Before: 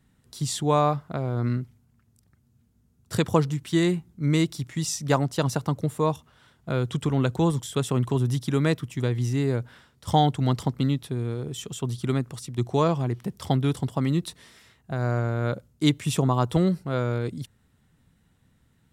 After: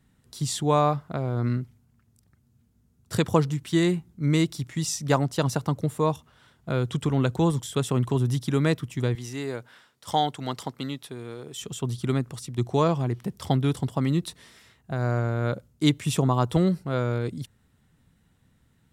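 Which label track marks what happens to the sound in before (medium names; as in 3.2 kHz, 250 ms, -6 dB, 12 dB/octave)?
9.150000	11.610000	high-pass 570 Hz 6 dB/octave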